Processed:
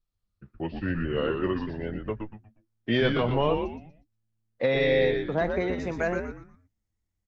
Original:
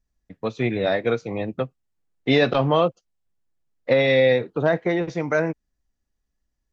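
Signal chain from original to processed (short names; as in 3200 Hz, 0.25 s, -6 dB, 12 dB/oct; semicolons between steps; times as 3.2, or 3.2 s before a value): speed glide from 70% -> 115%; frequency-shifting echo 0.12 s, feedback 33%, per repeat -110 Hz, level -5 dB; gain -6.5 dB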